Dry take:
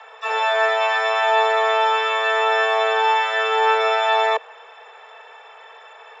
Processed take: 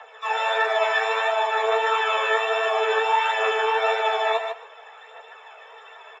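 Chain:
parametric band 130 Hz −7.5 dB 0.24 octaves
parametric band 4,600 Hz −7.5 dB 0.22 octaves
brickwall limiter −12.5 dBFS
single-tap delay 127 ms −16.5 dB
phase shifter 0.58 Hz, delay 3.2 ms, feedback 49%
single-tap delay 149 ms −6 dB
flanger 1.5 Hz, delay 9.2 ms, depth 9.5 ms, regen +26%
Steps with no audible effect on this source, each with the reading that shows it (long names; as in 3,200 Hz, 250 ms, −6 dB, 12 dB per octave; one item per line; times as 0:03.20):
parametric band 130 Hz: nothing at its input below 430 Hz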